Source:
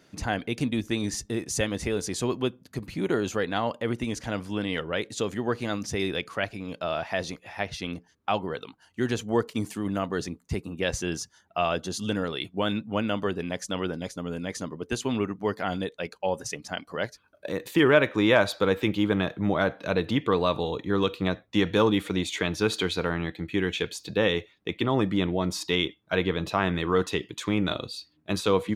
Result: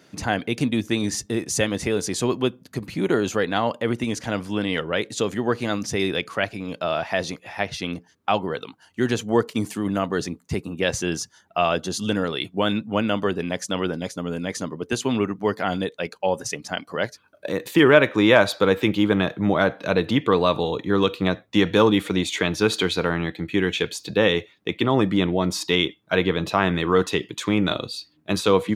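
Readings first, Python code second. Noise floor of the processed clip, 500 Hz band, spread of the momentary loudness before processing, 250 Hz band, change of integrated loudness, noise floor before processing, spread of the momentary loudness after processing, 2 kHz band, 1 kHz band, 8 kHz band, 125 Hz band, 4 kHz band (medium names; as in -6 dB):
-59 dBFS, +5.0 dB, 9 LU, +5.0 dB, +5.0 dB, -63 dBFS, 9 LU, +5.0 dB, +5.0 dB, +5.0 dB, +4.0 dB, +5.0 dB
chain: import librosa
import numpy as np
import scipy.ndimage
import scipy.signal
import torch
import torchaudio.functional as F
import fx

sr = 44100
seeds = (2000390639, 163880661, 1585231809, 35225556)

y = scipy.signal.sosfilt(scipy.signal.butter(2, 93.0, 'highpass', fs=sr, output='sos'), x)
y = y * librosa.db_to_amplitude(5.0)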